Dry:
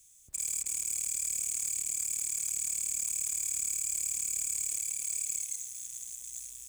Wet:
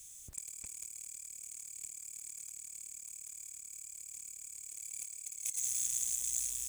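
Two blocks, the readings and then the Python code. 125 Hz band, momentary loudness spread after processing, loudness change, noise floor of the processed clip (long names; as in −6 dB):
can't be measured, 13 LU, −8.0 dB, −51 dBFS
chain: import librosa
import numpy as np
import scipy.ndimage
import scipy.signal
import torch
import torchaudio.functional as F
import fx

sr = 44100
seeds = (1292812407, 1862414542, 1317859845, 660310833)

y = fx.over_compress(x, sr, threshold_db=-41.0, ratio=-0.5)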